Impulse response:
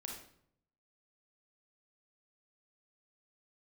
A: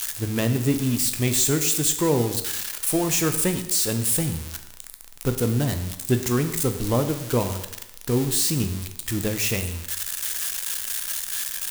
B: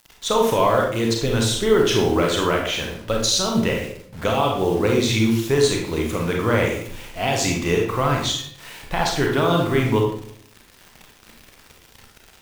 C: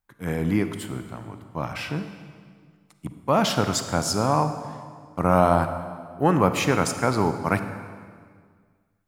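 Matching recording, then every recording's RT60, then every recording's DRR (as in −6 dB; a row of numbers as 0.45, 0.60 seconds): B; 0.90, 0.65, 1.8 seconds; 7.0, 0.0, 8.5 decibels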